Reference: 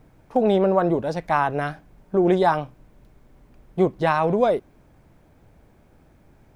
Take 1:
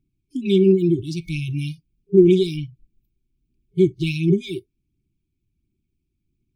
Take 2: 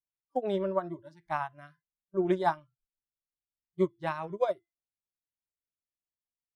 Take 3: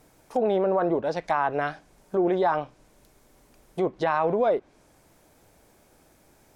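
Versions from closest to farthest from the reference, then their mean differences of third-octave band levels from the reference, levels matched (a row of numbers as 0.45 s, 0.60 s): 3, 2, 1; 3.5 dB, 7.0 dB, 10.0 dB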